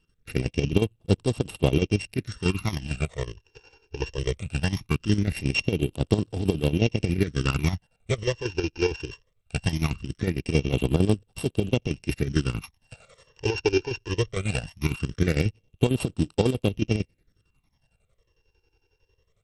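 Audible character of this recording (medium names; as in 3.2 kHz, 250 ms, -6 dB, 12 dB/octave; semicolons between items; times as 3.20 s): a buzz of ramps at a fixed pitch in blocks of 16 samples; chopped level 11 Hz, depth 65%, duty 55%; phasing stages 12, 0.2 Hz, lowest notch 200–2100 Hz; SBC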